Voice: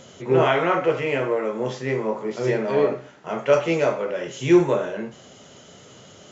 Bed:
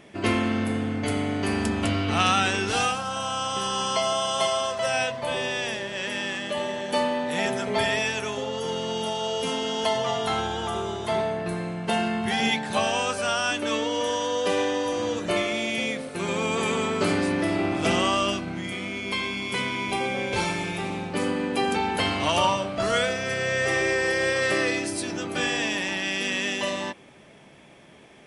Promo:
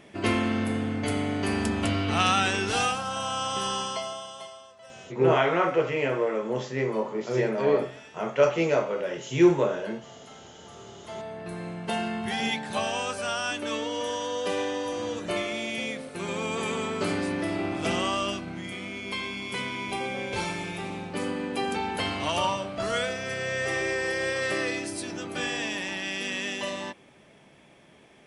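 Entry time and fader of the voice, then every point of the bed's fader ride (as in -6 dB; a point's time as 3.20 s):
4.90 s, -3.0 dB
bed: 3.71 s -1.5 dB
4.68 s -23.5 dB
10.51 s -23.5 dB
11.68 s -4.5 dB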